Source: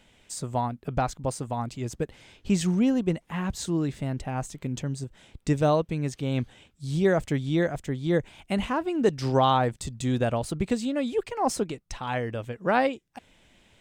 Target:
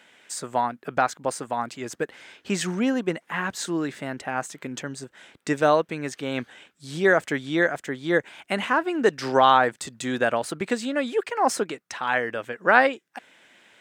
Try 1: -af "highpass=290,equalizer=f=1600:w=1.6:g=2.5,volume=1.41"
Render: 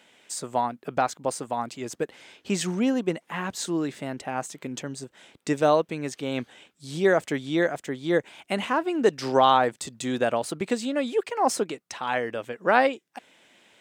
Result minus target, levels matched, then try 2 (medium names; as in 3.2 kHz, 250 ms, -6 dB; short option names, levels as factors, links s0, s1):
2 kHz band -4.5 dB
-af "highpass=290,equalizer=f=1600:w=1.6:g=9.5,volume=1.41"